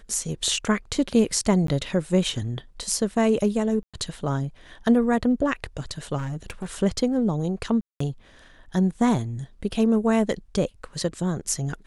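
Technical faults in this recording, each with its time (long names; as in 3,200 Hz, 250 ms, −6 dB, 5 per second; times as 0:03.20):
0:01.67–0:01.68: drop-out 13 ms
0:03.83–0:03.94: drop-out 106 ms
0:06.17–0:06.76: clipping −26.5 dBFS
0:07.81–0:08.00: drop-out 194 ms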